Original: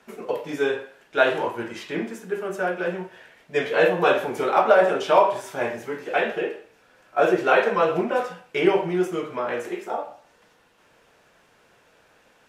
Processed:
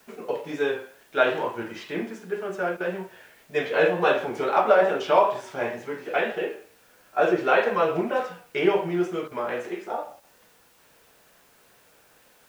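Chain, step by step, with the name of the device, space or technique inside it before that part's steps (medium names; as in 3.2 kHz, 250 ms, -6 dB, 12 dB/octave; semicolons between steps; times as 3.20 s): worn cassette (low-pass 6.3 kHz; wow and flutter; level dips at 2.77/9.28/10.20 s, 32 ms -9 dB; white noise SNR 35 dB); trim -2 dB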